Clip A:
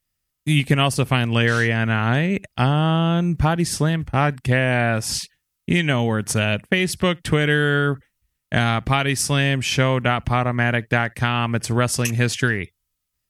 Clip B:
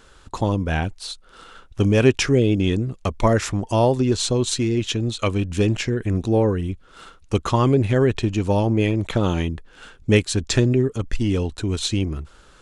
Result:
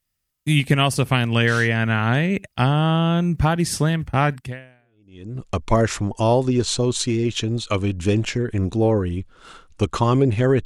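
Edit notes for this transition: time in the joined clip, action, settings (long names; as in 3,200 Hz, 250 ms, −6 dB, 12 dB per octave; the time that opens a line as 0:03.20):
clip A
0:04.89: continue with clip B from 0:02.41, crossfade 1.00 s exponential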